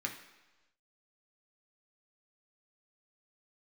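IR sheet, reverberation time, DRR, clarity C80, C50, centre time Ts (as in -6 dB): 1.1 s, 0.5 dB, 11.0 dB, 8.5 dB, 20 ms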